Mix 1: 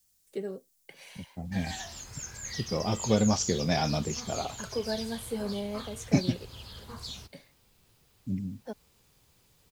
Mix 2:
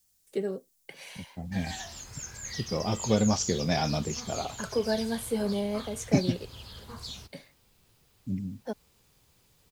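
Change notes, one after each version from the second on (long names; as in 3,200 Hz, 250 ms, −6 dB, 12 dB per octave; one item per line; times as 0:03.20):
first voice +4.5 dB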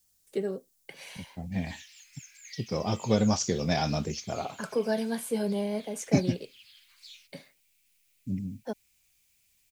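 background: add four-pole ladder high-pass 2,100 Hz, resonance 65%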